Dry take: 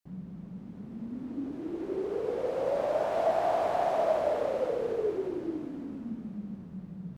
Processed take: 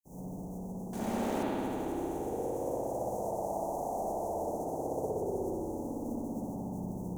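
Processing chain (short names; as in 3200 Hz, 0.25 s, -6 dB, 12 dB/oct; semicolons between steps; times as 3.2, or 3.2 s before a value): spectral contrast lowered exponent 0.49; Chebyshev band-stop 880–6200 Hz, order 4; compressor, threshold -35 dBFS, peak gain reduction 11.5 dB; 0.93–1.43 overdrive pedal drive 37 dB, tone 3900 Hz, clips at -27.5 dBFS; spring tank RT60 3.1 s, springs 60 ms, chirp 45 ms, DRR -9.5 dB; gain -6.5 dB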